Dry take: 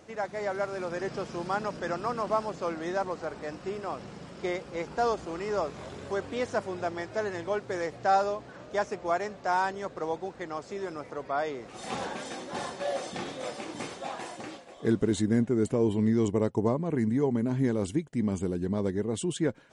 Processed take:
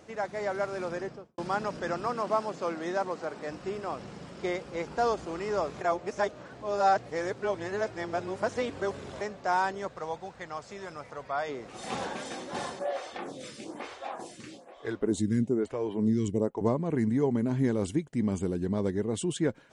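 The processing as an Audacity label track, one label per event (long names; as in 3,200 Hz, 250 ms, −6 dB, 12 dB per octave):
0.870000	1.380000	fade out and dull
2.070000	3.470000	high-pass filter 150 Hz
5.810000	9.210000	reverse
9.880000	11.490000	parametric band 330 Hz −10 dB 1.1 octaves
12.790000	16.610000	phaser with staggered stages 1.1 Hz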